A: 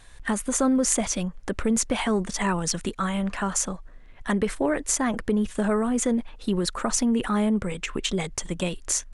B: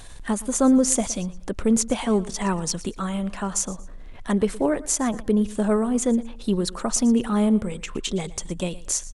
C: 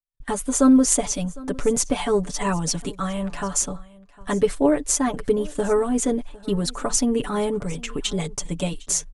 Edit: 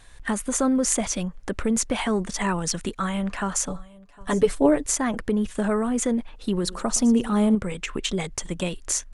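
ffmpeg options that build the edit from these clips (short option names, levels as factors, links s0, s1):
-filter_complex "[0:a]asplit=3[s0][s1][s2];[s0]atrim=end=3.682[s3];[2:a]atrim=start=3.678:end=4.862[s4];[s1]atrim=start=4.858:end=6.642[s5];[1:a]atrim=start=6.638:end=7.552[s6];[s2]atrim=start=7.548[s7];[s3][s4]acrossfade=d=0.004:c1=hsin:c2=hsin[s8];[s8][s5]acrossfade=d=0.004:c1=hsin:c2=hsin[s9];[s9][s6]acrossfade=d=0.004:c1=hsin:c2=hsin[s10];[s10][s7]acrossfade=d=0.004:c1=hsin:c2=hsin"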